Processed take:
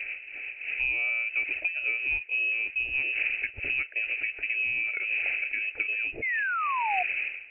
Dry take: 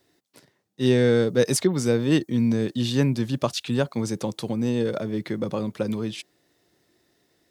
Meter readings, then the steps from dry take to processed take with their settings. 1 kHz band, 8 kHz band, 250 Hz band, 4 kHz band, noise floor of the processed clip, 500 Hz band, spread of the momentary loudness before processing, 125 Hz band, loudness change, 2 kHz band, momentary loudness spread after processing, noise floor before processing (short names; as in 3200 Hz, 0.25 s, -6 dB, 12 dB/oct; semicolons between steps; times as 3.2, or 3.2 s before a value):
+5.0 dB, under -40 dB, under -30 dB, -9.5 dB, -45 dBFS, -24.5 dB, 9 LU, under -25 dB, -3.5 dB, +12.0 dB, 3 LU, -70 dBFS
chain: wind noise 360 Hz -30 dBFS; HPF 180 Hz 12 dB/oct; compressor 6:1, threshold -33 dBFS, peak gain reduction 17.5 dB; inverted band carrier 2800 Hz; fixed phaser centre 440 Hz, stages 4; painted sound fall, 6.22–7.03, 700–2200 Hz -37 dBFS; gain +8.5 dB